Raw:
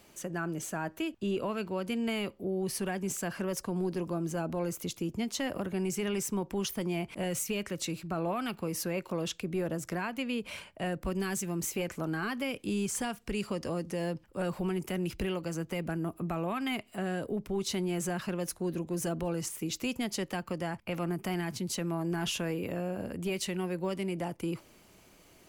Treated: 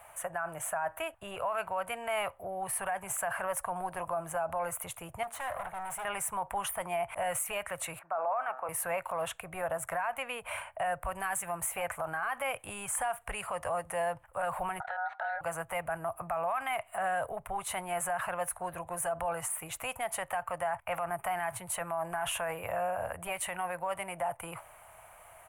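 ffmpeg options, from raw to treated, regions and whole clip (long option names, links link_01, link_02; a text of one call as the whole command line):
ffmpeg -i in.wav -filter_complex "[0:a]asettb=1/sr,asplit=3[link_01][link_02][link_03];[link_01]atrim=end=5.234[link_04];[link_02]atrim=start=5.23:end=6.05,asetpts=PTS-STARTPTS,afade=type=in:duration=0.004:curve=qsin,afade=type=out:start_time=0.816:duration=0.004:curve=qsin,bandreject=frequency=231.8:width_type=h:width=4,bandreject=frequency=463.6:width_type=h:width=4,bandreject=frequency=695.4:width_type=h:width=4,bandreject=frequency=927.2:width_type=h:width=4,bandreject=frequency=1159:width_type=h:width=4,bandreject=frequency=1390.8:width_type=h:width=4,bandreject=frequency=1622.6:width_type=h:width=4,bandreject=frequency=1854.4:width_type=h:width=4,bandreject=frequency=2086.2:width_type=h:width=4,bandreject=frequency=2318:width_type=h:width=4,bandreject=frequency=2549.8:width_type=h:width=4,bandreject=frequency=2781.6:width_type=h:width=4,bandreject=frequency=3013.4:width_type=h:width=4,bandreject=frequency=3245.2:width_type=h:width=4,bandreject=frequency=3477:width_type=h:width=4,bandreject=frequency=3708.8:width_type=h:width=4,bandreject=frequency=3940.6:width_type=h:width=4,bandreject=frequency=4172.4:width_type=h:width=4,bandreject=frequency=4404.2:width_type=h:width=4,bandreject=frequency=4636:width_type=h:width=4,bandreject=frequency=4867.8:width_type=h:width=4,bandreject=frequency=5099.6:width_type=h:width=4,bandreject=frequency=5331.4:width_type=h:width=4,bandreject=frequency=5563.2:width_type=h:width=4,bandreject=frequency=5795:width_type=h:width=4,bandreject=frequency=6026.8:width_type=h:width=4,bandreject=frequency=6258.6:width_type=h:width=4,bandreject=frequency=6490.4:width_type=h:width=4,bandreject=frequency=6722.2:width_type=h:width=4,bandreject=frequency=6954:width_type=h:width=4,bandreject=frequency=7185.8:width_type=h:width=4,bandreject=frequency=7417.6:width_type=h:width=4,agate=range=-33dB:threshold=-37dB:ratio=3:release=100:detection=peak,asoftclip=type=hard:threshold=-39.5dB[link_05];[link_03]atrim=start=6.046[link_06];[link_04][link_05]acrossfade=duration=0.004:curve1=hsin:curve2=qsin[link_07];[link_07][link_06]acrossfade=duration=0.004:curve1=qsin:curve2=hsin,asettb=1/sr,asplit=3[link_08][link_09][link_10];[link_08]atrim=end=7.994[link_11];[link_09]atrim=start=7.99:end=8.69,asetpts=PTS-STARTPTS,afade=type=in:duration=0.004:curve=qsin,afade=type=out:start_time=0.696:duration=0.004:curve=qsin,acrossover=split=290 2000:gain=0.0631 1 0.1[link_12][link_13][link_14];[link_12][link_13][link_14]amix=inputs=3:normalize=0,bandreject=frequency=129.2:width_type=h:width=4,bandreject=frequency=258.4:width_type=h:width=4,bandreject=frequency=387.6:width_type=h:width=4,bandreject=frequency=516.8:width_type=h:width=4,bandreject=frequency=646:width_type=h:width=4,bandreject=frequency=775.2:width_type=h:width=4,bandreject=frequency=904.4:width_type=h:width=4,bandreject=frequency=1033.6:width_type=h:width=4,bandreject=frequency=1162.8:width_type=h:width=4,bandreject=frequency=1292:width_type=h:width=4,bandreject=frequency=1421.2:width_type=h:width=4,bandreject=frequency=1550.4:width_type=h:width=4,bandreject=frequency=1679.6:width_type=h:width=4,bandreject=frequency=1808.8:width_type=h:width=4[link_15];[link_10]atrim=start=8.686[link_16];[link_11][link_15]acrossfade=duration=0.004:curve1=hsin:curve2=qsin[link_17];[link_17][link_16]acrossfade=duration=0.004:curve1=qsin:curve2=hsin,asettb=1/sr,asplit=3[link_18][link_19][link_20];[link_18]atrim=end=14.804[link_21];[link_19]atrim=start=14.8:end=15.41,asetpts=PTS-STARTPTS,afade=type=in:duration=0.004:curve=qsin,afade=type=out:start_time=0.606:duration=0.004:curve=qsin,highpass=320,equalizer=frequency=320:width_type=q:width=4:gain=6,equalizer=frequency=570:width_type=q:width=4:gain=7,equalizer=frequency=1200:width_type=q:width=4:gain=-6,equalizer=frequency=2200:width_type=q:width=4:gain=-6,equalizer=frequency=3300:width_type=q:width=4:gain=7,lowpass=frequency=3600:width=0.5412,lowpass=frequency=3600:width=1.3066,acompressor=threshold=-40dB:ratio=5:attack=3.2:release=140:knee=1:detection=peak,aeval=exprs='val(0)*sin(2*PI*1100*n/s)':channel_layout=same[link_22];[link_20]atrim=start=15.406[link_23];[link_21][link_22]acrossfade=duration=0.004:curve1=hsin:curve2=qsin[link_24];[link_24][link_23]acrossfade=duration=0.004:curve1=qsin:curve2=hsin,firequalizer=gain_entry='entry(110,0);entry(220,-21);entry(670,14);entry(1900,7);entry(4900,-18);entry(9400,11);entry(14000,1)':delay=0.05:min_phase=1,alimiter=limit=-24dB:level=0:latency=1:release=27,equalizer=frequency=380:width_type=o:width=0.53:gain=-7.5" out.wav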